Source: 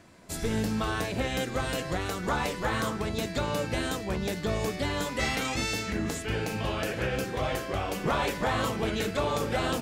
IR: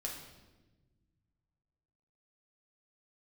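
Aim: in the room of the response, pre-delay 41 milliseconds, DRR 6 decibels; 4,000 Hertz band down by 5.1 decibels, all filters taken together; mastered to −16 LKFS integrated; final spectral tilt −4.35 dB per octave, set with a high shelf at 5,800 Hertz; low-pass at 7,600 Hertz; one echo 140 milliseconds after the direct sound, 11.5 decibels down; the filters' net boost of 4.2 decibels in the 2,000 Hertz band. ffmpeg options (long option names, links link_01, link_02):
-filter_complex "[0:a]lowpass=7600,equalizer=frequency=2000:width_type=o:gain=8,equalizer=frequency=4000:width_type=o:gain=-8,highshelf=frequency=5800:gain=-7,aecho=1:1:140:0.266,asplit=2[link_01][link_02];[1:a]atrim=start_sample=2205,adelay=41[link_03];[link_02][link_03]afir=irnorm=-1:irlink=0,volume=-6dB[link_04];[link_01][link_04]amix=inputs=2:normalize=0,volume=11.5dB"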